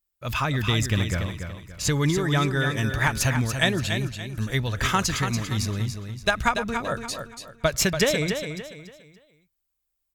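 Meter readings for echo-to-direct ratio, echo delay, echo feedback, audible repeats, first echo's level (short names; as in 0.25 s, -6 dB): -7.0 dB, 0.286 s, 33%, 3, -7.5 dB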